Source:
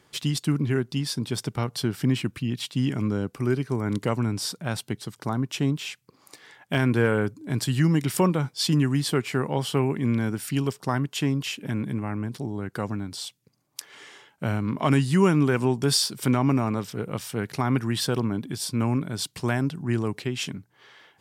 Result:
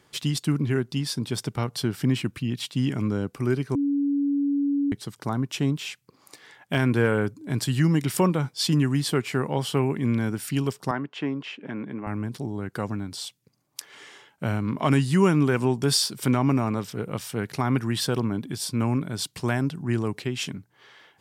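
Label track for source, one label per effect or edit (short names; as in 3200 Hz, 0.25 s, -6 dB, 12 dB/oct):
3.750000	4.920000	bleep 283 Hz -20.5 dBFS
10.910000	12.070000	BPF 250–2300 Hz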